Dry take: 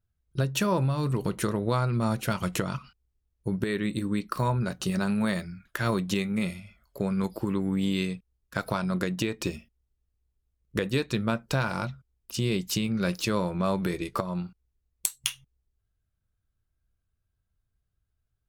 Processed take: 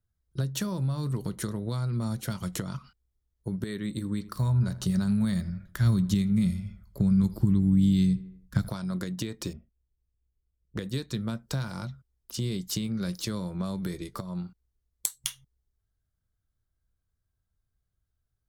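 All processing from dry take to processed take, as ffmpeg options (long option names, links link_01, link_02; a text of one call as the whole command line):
ffmpeg -i in.wav -filter_complex "[0:a]asettb=1/sr,asplit=3[link_01][link_02][link_03];[link_01]atrim=end=3.914[link_04];[link_02]atrim=start=3.91:end=8.69,asetpts=PTS-STARTPTS,afade=type=in:duration=0.004:curve=qsin,afade=type=out:start_time=4.776:duration=0.004:curve=qsin,asplit=2[link_05][link_06];[link_06]adelay=80,lowpass=frequency=3000:poles=1,volume=-18.5dB,asplit=2[link_07][link_08];[link_08]adelay=80,lowpass=frequency=3000:poles=1,volume=0.51,asplit=2[link_09][link_10];[link_10]adelay=80,lowpass=frequency=3000:poles=1,volume=0.51,asplit=2[link_11][link_12];[link_12]adelay=80,lowpass=frequency=3000:poles=1,volume=0.51[link_13];[link_05][link_07][link_09][link_11][link_13]amix=inputs=5:normalize=0,atrim=end_sample=210798,asubboost=boost=7.5:cutoff=200[link_14];[link_03]atrim=start=8.686[link_15];[link_04][link_14]acrossfade=duration=0.004:curve1=hsin:curve2=qsin[link_16];[link_16][link_15]acrossfade=duration=0.004:curve1=qsin:curve2=hsin,asettb=1/sr,asplit=3[link_17][link_18][link_19];[link_17]atrim=end=9.534[link_20];[link_18]atrim=start=9.53:end=10.79,asetpts=PTS-STARTPTS,afade=type=in:duration=0.004:curve=qsin,afade=type=out:start_time=1.256:duration=0.004:curve=qsin,equalizer=frequency=240:width=6.1:gain=-4.5,adynamicsmooth=sensitivity=2.5:basefreq=780[link_21];[link_19]atrim=start=10.786[link_22];[link_20][link_21]acrossfade=duration=0.004:curve1=hsin:curve2=qsin[link_23];[link_23][link_22]acrossfade=duration=0.004:curve1=qsin:curve2=hsin,equalizer=frequency=2600:width=4.9:gain=-10.5,acrossover=split=250|3000[link_24][link_25][link_26];[link_25]acompressor=threshold=-37dB:ratio=6[link_27];[link_24][link_27][link_26]amix=inputs=3:normalize=0,volume=-1.5dB" out.wav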